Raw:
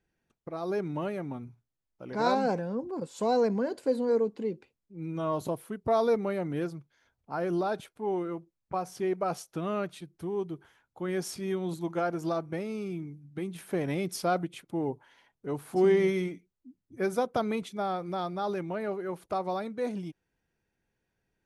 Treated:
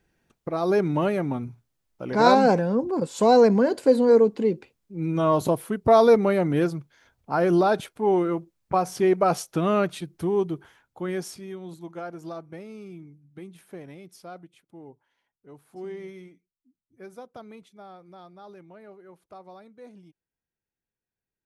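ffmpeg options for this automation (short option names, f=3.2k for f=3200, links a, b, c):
-af "volume=9.5dB,afade=t=out:st=10.25:d=0.83:silence=0.473151,afade=t=out:st=11.08:d=0.39:silence=0.354813,afade=t=out:st=13.39:d=0.6:silence=0.398107"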